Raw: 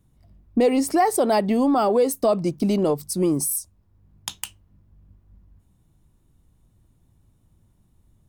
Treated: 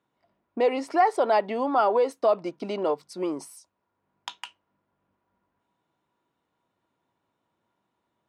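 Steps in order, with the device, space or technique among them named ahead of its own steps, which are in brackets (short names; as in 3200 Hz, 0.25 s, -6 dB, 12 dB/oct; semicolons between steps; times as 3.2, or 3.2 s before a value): tin-can telephone (BPF 510–3100 Hz; small resonant body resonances 970/1400 Hz, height 10 dB, ringing for 0.1 s)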